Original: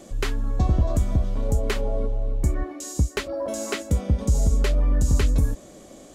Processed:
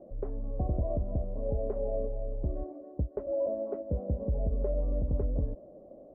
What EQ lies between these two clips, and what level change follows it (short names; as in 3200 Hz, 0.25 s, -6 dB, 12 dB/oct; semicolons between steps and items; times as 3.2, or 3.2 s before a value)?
ladder low-pass 670 Hz, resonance 60%; 0.0 dB